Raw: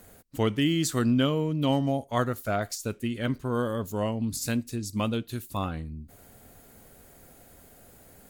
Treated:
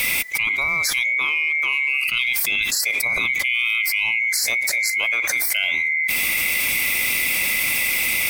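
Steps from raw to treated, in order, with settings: band-swap scrambler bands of 2000 Hz; fast leveller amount 100%

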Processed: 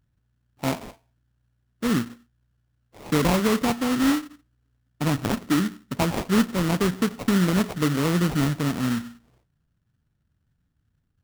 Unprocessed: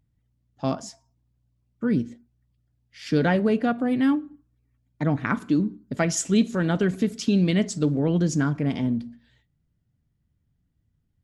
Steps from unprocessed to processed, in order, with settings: sample-rate reducer 1600 Hz, jitter 20%; running maximum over 3 samples

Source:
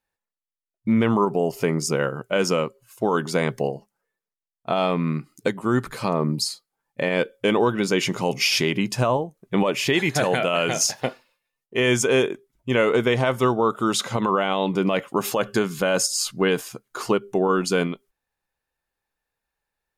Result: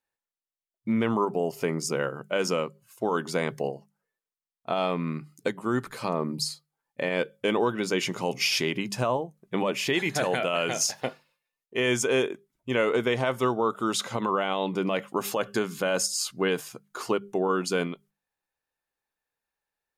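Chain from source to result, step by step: low shelf 93 Hz -9.5 dB; notches 50/100/150/200 Hz; gain -4.5 dB

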